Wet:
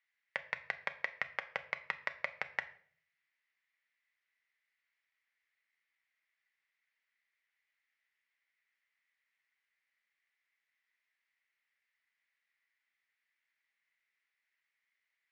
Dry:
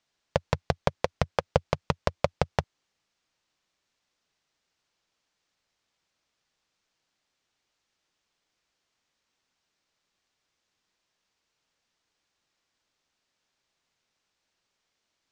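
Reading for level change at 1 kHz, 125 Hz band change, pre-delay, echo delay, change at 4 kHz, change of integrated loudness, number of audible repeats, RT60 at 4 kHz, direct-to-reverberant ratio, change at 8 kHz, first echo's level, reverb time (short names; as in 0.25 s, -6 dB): -14.0 dB, -33.0 dB, 5 ms, none, -11.5 dB, -9.5 dB, none, 0.45 s, 8.5 dB, under -15 dB, none, 0.50 s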